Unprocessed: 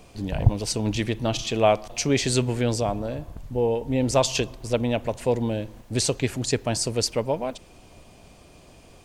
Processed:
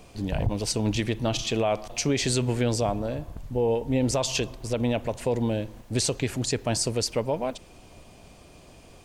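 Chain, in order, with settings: limiter -15.5 dBFS, peak gain reduction 11 dB

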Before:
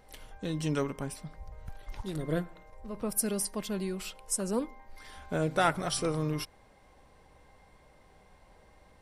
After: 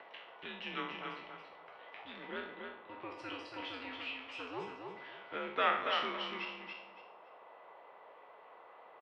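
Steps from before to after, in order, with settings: spectral trails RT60 0.59 s; differentiator; gate with hold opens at -55 dBFS; upward compressor, threshold -56 dBFS; band noise 540–1300 Hz -69 dBFS; requantised 12-bit, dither none; on a send: feedback echo 0.282 s, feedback 23%, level -5 dB; on the sum: mistuned SSB -110 Hz 290–3000 Hz; gain +10.5 dB

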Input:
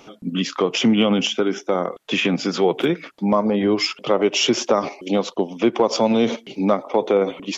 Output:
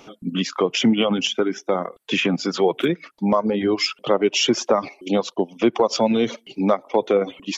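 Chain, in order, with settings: reverb removal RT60 0.91 s

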